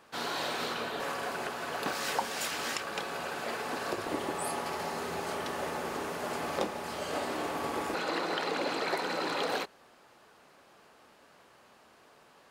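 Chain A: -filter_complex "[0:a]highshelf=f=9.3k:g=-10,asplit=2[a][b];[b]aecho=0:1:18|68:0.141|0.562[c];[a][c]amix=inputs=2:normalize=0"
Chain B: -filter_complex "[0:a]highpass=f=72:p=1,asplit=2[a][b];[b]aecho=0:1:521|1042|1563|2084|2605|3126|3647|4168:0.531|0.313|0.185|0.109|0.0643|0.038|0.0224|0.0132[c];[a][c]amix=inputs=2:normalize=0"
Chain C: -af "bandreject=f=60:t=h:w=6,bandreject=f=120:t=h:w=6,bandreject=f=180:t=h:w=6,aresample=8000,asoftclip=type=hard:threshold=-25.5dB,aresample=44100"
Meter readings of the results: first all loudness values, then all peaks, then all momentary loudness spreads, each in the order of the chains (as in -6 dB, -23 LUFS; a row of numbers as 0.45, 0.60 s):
-33.5, -33.0, -35.0 LUFS; -15.5, -15.5, -23.5 dBFS; 4, 14, 4 LU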